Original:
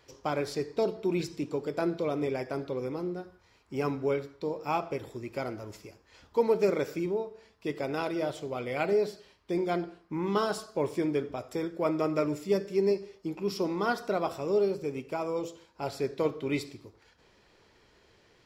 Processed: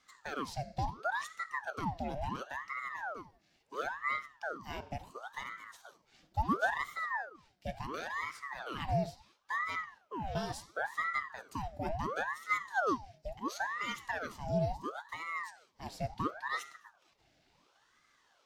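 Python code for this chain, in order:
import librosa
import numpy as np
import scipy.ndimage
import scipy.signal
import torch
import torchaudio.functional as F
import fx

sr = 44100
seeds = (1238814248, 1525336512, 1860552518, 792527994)

y = fx.fixed_phaser(x, sr, hz=370.0, stages=4)
y = fx.ring_lfo(y, sr, carrier_hz=950.0, swing_pct=75, hz=0.72)
y = y * 10.0 ** (-2.5 / 20.0)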